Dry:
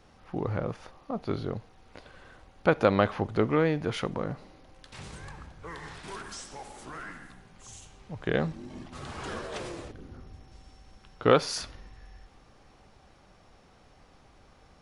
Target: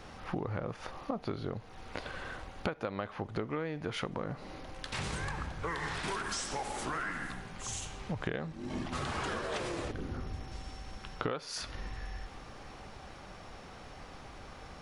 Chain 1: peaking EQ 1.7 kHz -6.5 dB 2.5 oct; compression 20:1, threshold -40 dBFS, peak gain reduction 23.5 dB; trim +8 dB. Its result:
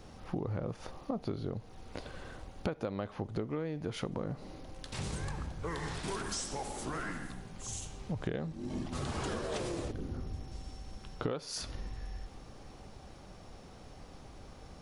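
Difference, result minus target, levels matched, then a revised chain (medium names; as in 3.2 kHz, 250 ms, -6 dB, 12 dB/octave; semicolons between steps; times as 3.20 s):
2 kHz band -5.5 dB
peaking EQ 1.7 kHz +3 dB 2.5 oct; compression 20:1, threshold -40 dBFS, peak gain reduction 27 dB; trim +8 dB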